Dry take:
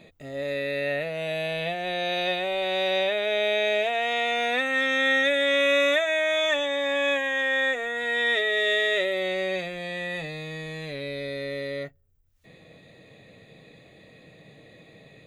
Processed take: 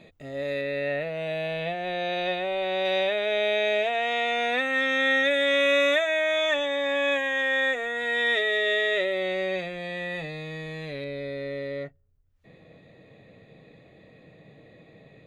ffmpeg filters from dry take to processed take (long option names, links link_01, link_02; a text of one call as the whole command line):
ffmpeg -i in.wav -af "asetnsamples=nb_out_samples=441:pad=0,asendcmd='0.61 lowpass f 2500;2.85 lowpass f 5100;5.31 lowpass f 8500;6.07 lowpass f 4900;7.12 lowpass f 8000;8.57 lowpass f 3700;11.04 lowpass f 1700',lowpass=frequency=5600:poles=1" out.wav